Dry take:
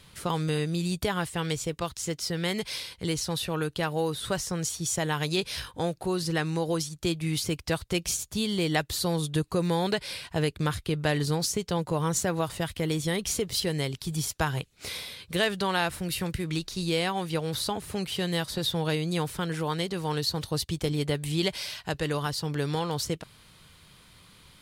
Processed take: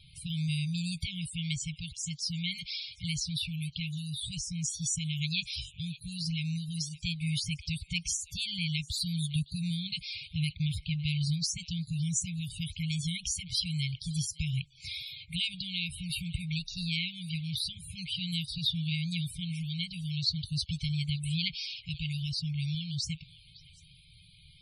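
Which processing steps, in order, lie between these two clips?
linear-phase brick-wall band-stop 180–2,100 Hz
echo through a band-pass that steps 187 ms, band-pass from 460 Hz, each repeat 1.4 octaves, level −11 dB
spectral peaks only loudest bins 64

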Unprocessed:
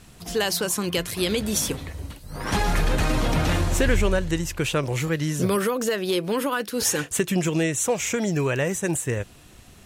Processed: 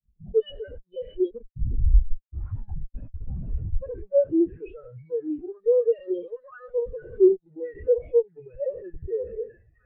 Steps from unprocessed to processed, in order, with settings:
peak hold with a decay on every bin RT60 1.13 s
0:05.74–0:06.60: high-pass filter 340 Hz 12 dB per octave
linear-prediction vocoder at 8 kHz pitch kept
delay with a band-pass on its return 653 ms, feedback 62%, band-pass 1,500 Hz, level −15 dB
0:01.31–0:02.33: comparator with hysteresis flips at −23.5 dBFS
brickwall limiter −16 dBFS, peak gain reduction 10.5 dB
fuzz pedal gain 44 dB, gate −46 dBFS
every bin expanded away from the loudest bin 4 to 1

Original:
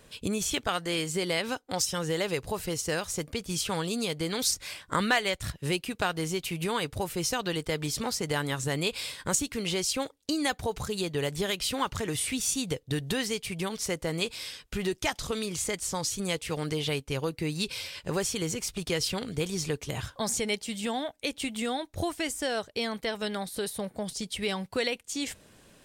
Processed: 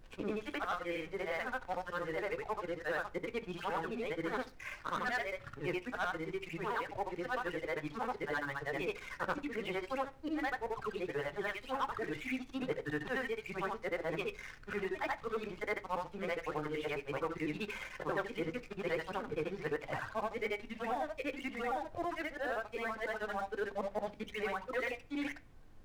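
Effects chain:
every overlapping window played backwards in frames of 187 ms
low-pass filter 1,800 Hz 24 dB per octave
reverb reduction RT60 1.1 s
high-pass filter 1,100 Hz 6 dB per octave
in parallel at −1.5 dB: downward compressor, threshold −50 dBFS, peak gain reduction 18.5 dB
on the sum: leveller curve on the samples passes 3
speech leveller within 4 dB 0.5 s
background noise brown −51 dBFS
on a send at −10 dB: convolution reverb RT60 0.45 s, pre-delay 3 ms
on the sum: level −6 dB

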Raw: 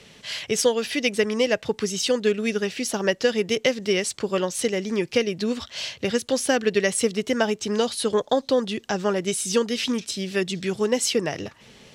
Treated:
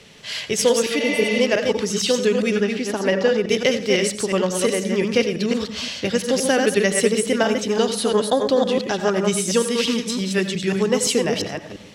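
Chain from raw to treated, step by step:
delay that plays each chunk backwards 173 ms, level −4 dB
0:01.03–0:01.39: healed spectral selection 550–7,800 Hz before
0:02.55–0:03.48: high-shelf EQ 6,600 Hz → 3,500 Hz −11.5 dB
convolution reverb RT60 0.35 s, pre-delay 81 ms, DRR 11 dB
level +2 dB

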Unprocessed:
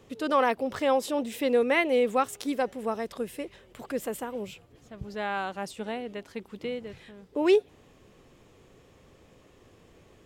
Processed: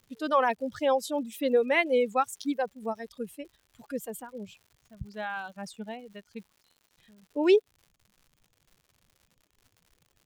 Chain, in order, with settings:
spectral dynamics exaggerated over time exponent 1.5
0:06.52–0:06.98: inverse Chebyshev high-pass filter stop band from 2,600 Hz
reverb reduction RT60 0.9 s
surface crackle 150 per second −50 dBFS
level +1.5 dB

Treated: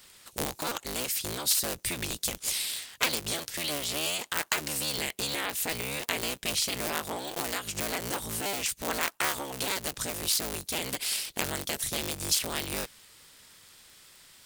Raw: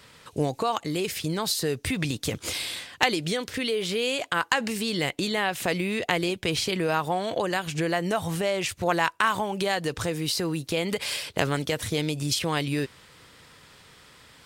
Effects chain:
sub-harmonics by changed cycles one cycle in 3, inverted
first-order pre-emphasis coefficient 0.8
level +4 dB

